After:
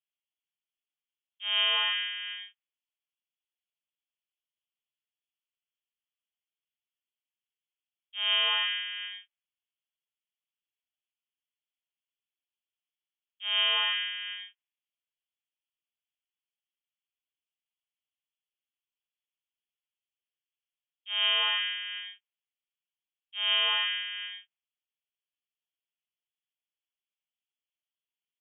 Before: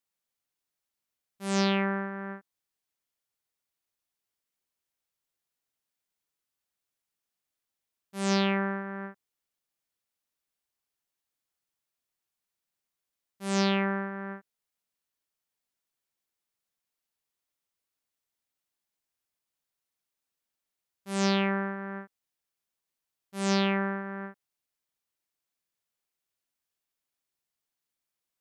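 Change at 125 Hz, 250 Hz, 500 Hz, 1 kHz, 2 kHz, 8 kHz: no reading, under -40 dB, -15.5 dB, -5.0 dB, +3.0 dB, under -35 dB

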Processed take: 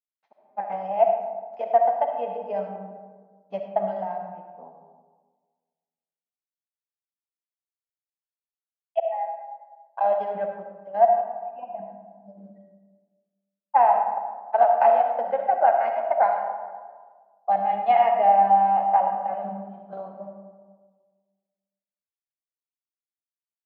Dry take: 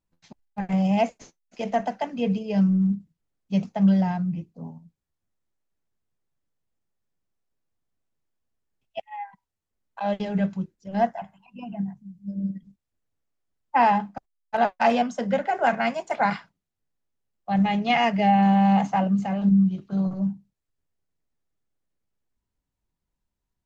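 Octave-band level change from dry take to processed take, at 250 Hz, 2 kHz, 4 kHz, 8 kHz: -20.5 dB, -7.5 dB, under -10 dB, no reading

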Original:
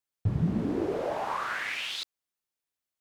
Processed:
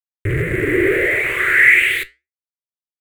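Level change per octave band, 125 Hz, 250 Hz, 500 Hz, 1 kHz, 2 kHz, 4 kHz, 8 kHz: +7.0 dB, +8.0 dB, +13.5 dB, +2.0 dB, +24.0 dB, +7.5 dB, +13.0 dB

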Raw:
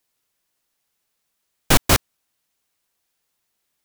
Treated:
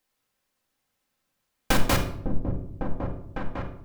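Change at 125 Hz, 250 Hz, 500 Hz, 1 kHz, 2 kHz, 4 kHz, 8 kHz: -2.5 dB, -1.5 dB, -3.0 dB, -4.5 dB, -5.5 dB, -9.0 dB, -11.5 dB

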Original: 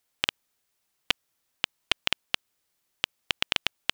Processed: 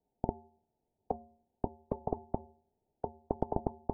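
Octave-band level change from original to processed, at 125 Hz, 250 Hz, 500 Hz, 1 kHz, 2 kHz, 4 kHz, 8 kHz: +9.0 dB, +8.5 dB, +7.5 dB, +1.0 dB, under -40 dB, under -40 dB, under -35 dB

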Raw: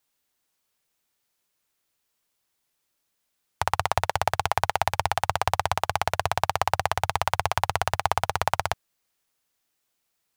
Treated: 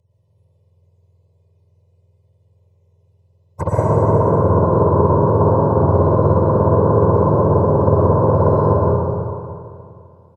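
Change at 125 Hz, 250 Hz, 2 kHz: +20.5 dB, +28.5 dB, -10.5 dB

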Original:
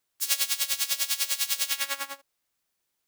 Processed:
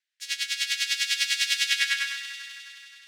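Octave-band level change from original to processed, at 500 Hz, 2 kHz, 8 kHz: under -40 dB, +8.5 dB, -3.0 dB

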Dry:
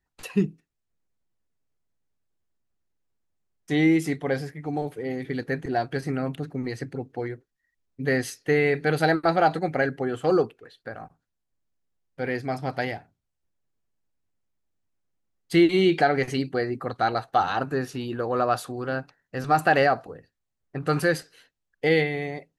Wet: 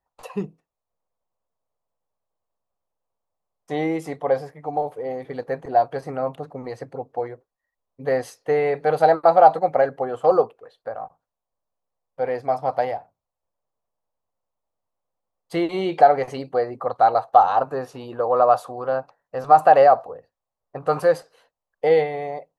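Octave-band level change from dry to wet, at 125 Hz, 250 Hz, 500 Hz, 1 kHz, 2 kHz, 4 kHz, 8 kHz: -6.5 dB, -6.0 dB, +5.5 dB, +8.5 dB, -5.5 dB, -6.5 dB, no reading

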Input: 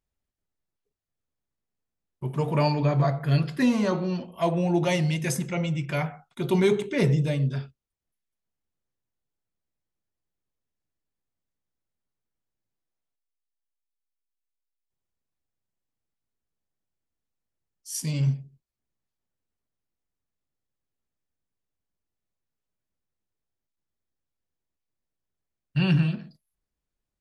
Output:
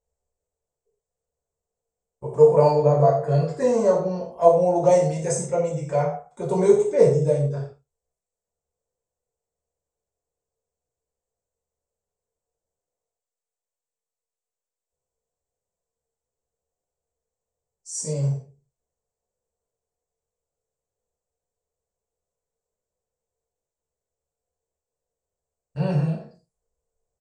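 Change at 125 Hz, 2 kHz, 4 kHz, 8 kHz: -0.5 dB, -8.5 dB, -8.5 dB, +4.5 dB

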